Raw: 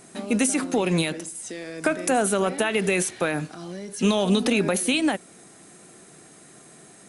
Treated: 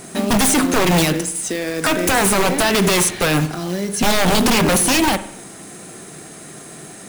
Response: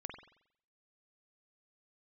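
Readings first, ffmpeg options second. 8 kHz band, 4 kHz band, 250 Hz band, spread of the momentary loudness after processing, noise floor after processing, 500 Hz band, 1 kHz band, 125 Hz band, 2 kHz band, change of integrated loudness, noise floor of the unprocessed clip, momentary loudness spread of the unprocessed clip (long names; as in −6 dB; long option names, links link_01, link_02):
+9.5 dB, +10.0 dB, +6.0 dB, 21 LU, −38 dBFS, +5.0 dB, +10.0 dB, +8.5 dB, +8.0 dB, +7.5 dB, −50 dBFS, 13 LU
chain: -filter_complex "[0:a]acrusher=bits=3:mode=log:mix=0:aa=0.000001,aeval=exprs='0.0794*(abs(mod(val(0)/0.0794+3,4)-2)-1)':channel_layout=same,asplit=2[link_01][link_02];[link_02]lowshelf=frequency=160:gain=8[link_03];[1:a]atrim=start_sample=2205[link_04];[link_03][link_04]afir=irnorm=-1:irlink=0,volume=-2.5dB[link_05];[link_01][link_05]amix=inputs=2:normalize=0,volume=8.5dB"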